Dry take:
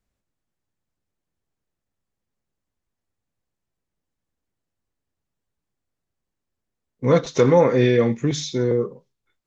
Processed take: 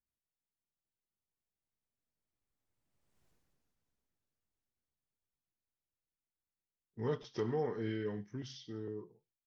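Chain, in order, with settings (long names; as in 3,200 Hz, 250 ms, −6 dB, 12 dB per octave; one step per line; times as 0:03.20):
source passing by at 0:03.26, 44 m/s, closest 6.2 metres
level +8.5 dB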